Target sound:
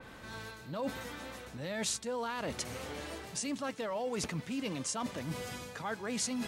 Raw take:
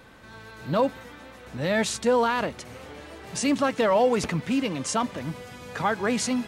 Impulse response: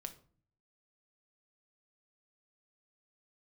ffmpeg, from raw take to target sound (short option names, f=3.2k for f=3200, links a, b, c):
-af "areverse,acompressor=threshold=-35dB:ratio=6,areverse,adynamicequalizer=threshold=0.00141:dfrequency=3700:dqfactor=0.7:tfrequency=3700:tqfactor=0.7:attack=5:release=100:ratio=0.375:range=3:mode=boostabove:tftype=highshelf"